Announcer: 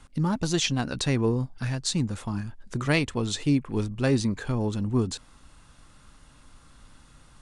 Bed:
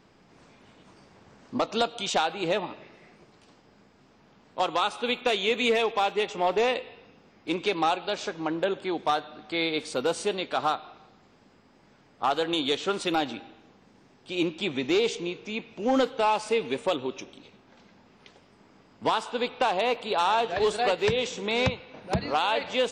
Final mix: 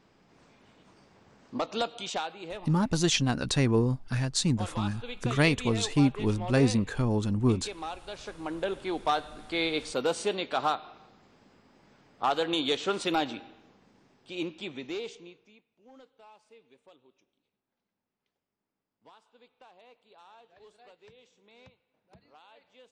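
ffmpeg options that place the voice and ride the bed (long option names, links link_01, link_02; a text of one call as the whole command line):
ffmpeg -i stem1.wav -i stem2.wav -filter_complex "[0:a]adelay=2500,volume=0dB[link_01];[1:a]volume=7dB,afade=type=out:start_time=1.91:duration=0.55:silence=0.375837,afade=type=in:start_time=8.02:duration=1.08:silence=0.266073,afade=type=out:start_time=13.24:duration=2.37:silence=0.0334965[link_02];[link_01][link_02]amix=inputs=2:normalize=0" out.wav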